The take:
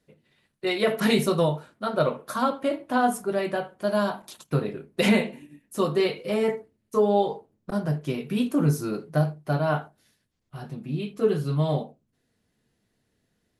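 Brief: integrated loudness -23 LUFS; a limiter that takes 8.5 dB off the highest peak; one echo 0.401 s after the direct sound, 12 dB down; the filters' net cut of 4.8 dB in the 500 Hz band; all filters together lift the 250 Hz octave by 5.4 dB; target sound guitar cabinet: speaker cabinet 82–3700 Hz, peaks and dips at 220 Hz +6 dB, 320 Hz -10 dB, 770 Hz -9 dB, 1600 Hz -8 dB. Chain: bell 250 Hz +5 dB; bell 500 Hz -4.5 dB; limiter -16.5 dBFS; speaker cabinet 82–3700 Hz, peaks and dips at 220 Hz +6 dB, 320 Hz -10 dB, 770 Hz -9 dB, 1600 Hz -8 dB; echo 0.401 s -12 dB; gain +4.5 dB

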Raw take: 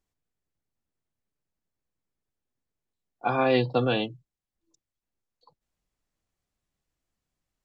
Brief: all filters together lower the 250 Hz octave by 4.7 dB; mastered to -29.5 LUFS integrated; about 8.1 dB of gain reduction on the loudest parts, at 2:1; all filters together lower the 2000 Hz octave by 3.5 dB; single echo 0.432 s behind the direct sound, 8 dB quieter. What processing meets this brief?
bell 250 Hz -5.5 dB; bell 2000 Hz -5 dB; compressor 2:1, threshold -35 dBFS; echo 0.432 s -8 dB; gain +6 dB

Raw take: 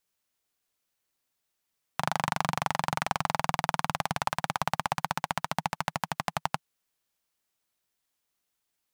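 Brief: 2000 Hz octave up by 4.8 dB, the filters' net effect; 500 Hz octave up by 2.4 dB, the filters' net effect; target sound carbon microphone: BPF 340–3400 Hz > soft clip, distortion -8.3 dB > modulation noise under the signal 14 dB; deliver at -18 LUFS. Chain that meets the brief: BPF 340–3400 Hz; bell 500 Hz +3.5 dB; bell 2000 Hz +6.5 dB; soft clip -18.5 dBFS; modulation noise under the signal 14 dB; gain +16 dB

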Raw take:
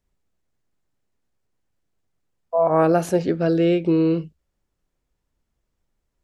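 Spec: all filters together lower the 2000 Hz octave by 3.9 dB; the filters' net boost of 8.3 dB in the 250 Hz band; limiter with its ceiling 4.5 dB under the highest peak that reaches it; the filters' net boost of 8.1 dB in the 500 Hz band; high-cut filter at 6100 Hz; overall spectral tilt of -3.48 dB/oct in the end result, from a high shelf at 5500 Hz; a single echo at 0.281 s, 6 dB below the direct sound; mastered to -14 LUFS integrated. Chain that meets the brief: LPF 6100 Hz; bell 250 Hz +9 dB; bell 500 Hz +8 dB; bell 2000 Hz -7 dB; high shelf 5500 Hz +4 dB; limiter -4 dBFS; echo 0.281 s -6 dB; gain -1.5 dB

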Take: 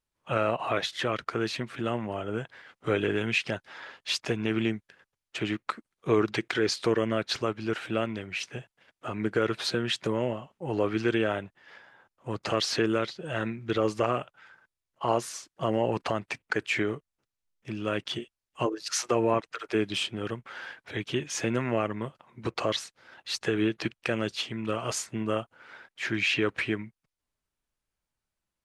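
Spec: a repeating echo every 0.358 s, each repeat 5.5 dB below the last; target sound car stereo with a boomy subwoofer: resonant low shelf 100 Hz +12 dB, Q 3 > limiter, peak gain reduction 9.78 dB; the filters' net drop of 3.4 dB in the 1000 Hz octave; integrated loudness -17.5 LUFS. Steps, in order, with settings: resonant low shelf 100 Hz +12 dB, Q 3; bell 1000 Hz -4.5 dB; feedback echo 0.358 s, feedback 53%, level -5.5 dB; gain +17 dB; limiter -7 dBFS

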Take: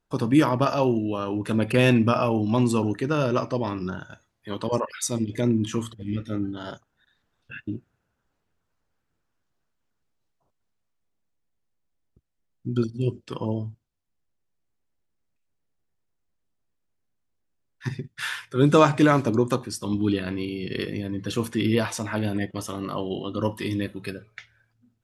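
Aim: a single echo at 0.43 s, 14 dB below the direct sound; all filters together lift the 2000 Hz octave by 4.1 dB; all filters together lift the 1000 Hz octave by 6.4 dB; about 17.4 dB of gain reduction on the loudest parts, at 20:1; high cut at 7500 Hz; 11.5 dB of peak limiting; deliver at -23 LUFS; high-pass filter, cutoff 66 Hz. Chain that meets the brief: HPF 66 Hz; LPF 7500 Hz; bell 1000 Hz +7 dB; bell 2000 Hz +3 dB; compressor 20:1, threshold -24 dBFS; limiter -23.5 dBFS; echo 0.43 s -14 dB; gain +11.5 dB

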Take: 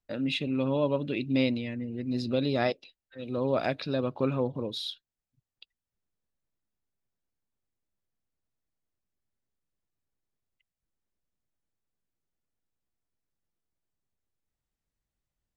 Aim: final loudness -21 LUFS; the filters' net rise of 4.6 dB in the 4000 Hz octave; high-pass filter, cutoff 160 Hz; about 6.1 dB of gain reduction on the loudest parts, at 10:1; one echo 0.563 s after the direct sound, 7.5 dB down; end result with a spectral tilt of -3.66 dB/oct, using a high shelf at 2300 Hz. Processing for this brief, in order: HPF 160 Hz; high shelf 2300 Hz -4 dB; bell 4000 Hz +8.5 dB; compressor 10:1, threshold -28 dBFS; echo 0.563 s -7.5 dB; gain +12.5 dB

